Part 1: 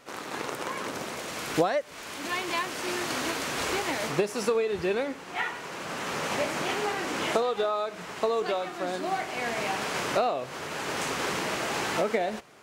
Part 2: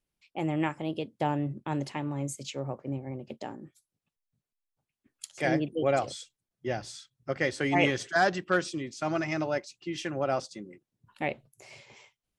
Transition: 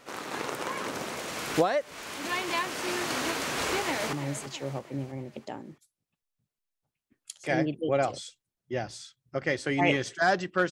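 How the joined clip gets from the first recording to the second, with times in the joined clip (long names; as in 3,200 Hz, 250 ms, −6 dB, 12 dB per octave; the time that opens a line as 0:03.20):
part 1
0:03.75–0:04.13: delay throw 330 ms, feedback 50%, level −11 dB
0:04.13: continue with part 2 from 0:02.07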